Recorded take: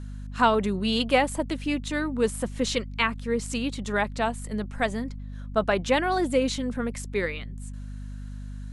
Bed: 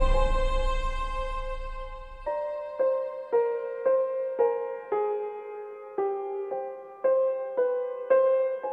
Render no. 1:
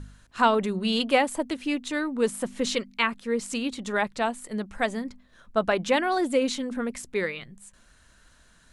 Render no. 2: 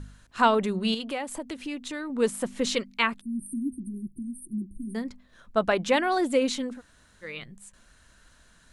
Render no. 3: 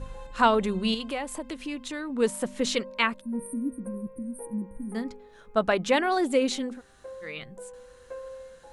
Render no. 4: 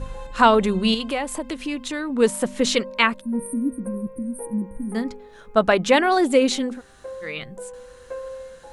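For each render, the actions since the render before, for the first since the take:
hum removal 50 Hz, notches 5
0:00.94–0:02.10: downward compressor 2.5 to 1, threshold −33 dBFS; 0:03.21–0:04.95: linear-phase brick-wall band-stop 380–8,500 Hz; 0:06.74–0:07.29: fill with room tone, crossfade 0.16 s
mix in bed −18.5 dB
level +6.5 dB; brickwall limiter −3 dBFS, peak gain reduction 1.5 dB

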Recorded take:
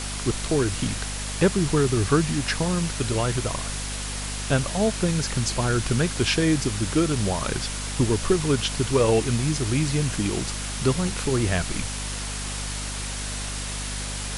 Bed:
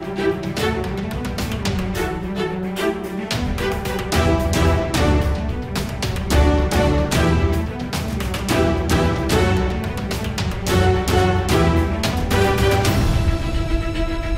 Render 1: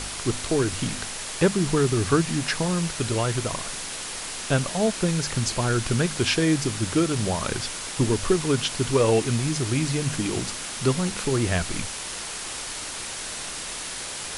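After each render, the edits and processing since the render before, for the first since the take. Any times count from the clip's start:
hum removal 50 Hz, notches 5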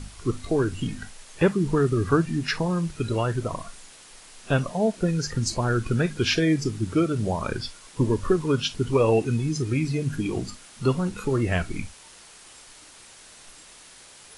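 noise reduction from a noise print 15 dB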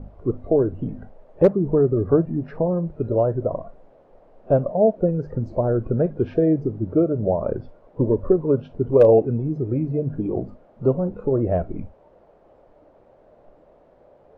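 low-pass with resonance 590 Hz, resonance Q 3.8
hard clipping −5 dBFS, distortion −33 dB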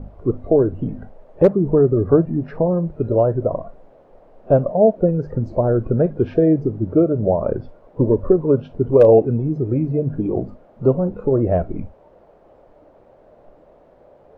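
level +3.5 dB
brickwall limiter −3 dBFS, peak gain reduction 1.5 dB

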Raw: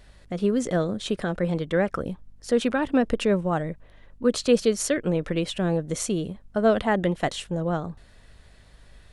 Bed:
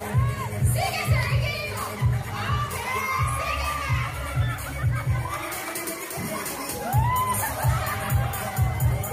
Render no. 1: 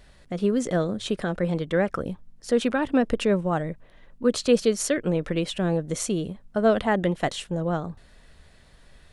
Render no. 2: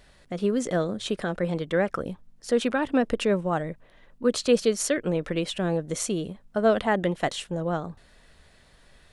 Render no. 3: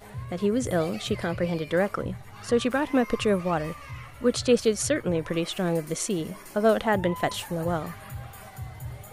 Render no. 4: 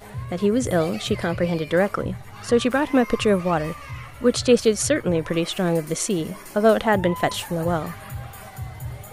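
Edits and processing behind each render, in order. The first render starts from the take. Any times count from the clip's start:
hum removal 50 Hz, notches 2
low-shelf EQ 210 Hz −5 dB
mix in bed −15 dB
level +4.5 dB

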